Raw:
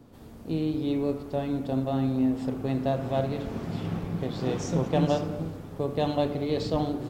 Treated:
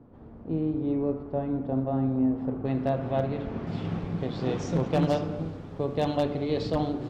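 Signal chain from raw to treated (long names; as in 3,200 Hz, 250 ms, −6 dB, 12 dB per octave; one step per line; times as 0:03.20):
low-pass filter 1,300 Hz 12 dB per octave, from 0:02.65 2,800 Hz, from 0:03.67 4,900 Hz
wave folding −16 dBFS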